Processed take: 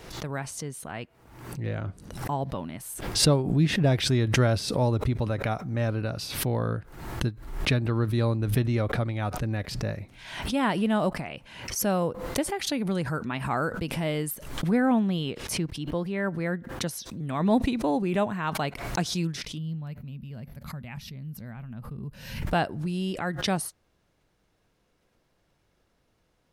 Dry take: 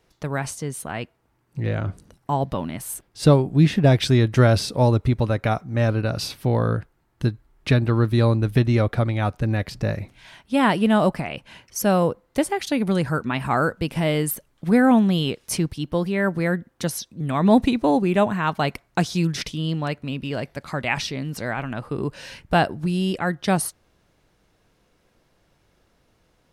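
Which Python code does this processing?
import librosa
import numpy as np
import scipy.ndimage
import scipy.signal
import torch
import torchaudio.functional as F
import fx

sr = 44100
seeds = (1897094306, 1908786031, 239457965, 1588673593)

y = fx.bass_treble(x, sr, bass_db=0, treble_db=-5, at=(14.71, 16.87))
y = fx.spec_box(y, sr, start_s=19.58, length_s=2.85, low_hz=250.0, high_hz=11000.0, gain_db=-15)
y = fx.pre_swell(y, sr, db_per_s=67.0)
y = F.gain(torch.from_numpy(y), -7.0).numpy()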